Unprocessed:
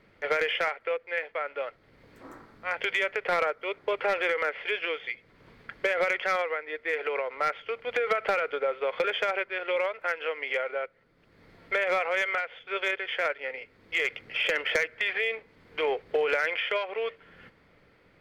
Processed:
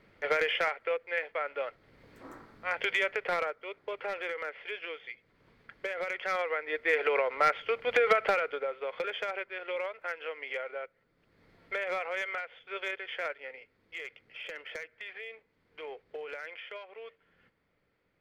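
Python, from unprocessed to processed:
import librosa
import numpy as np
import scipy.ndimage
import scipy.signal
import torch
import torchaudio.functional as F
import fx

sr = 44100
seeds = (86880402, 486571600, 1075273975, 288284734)

y = fx.gain(x, sr, db=fx.line((3.11, -1.5), (3.7, -9.0), (6.05, -9.0), (6.76, 2.5), (8.1, 2.5), (8.73, -7.0), (13.28, -7.0), (14.13, -15.0)))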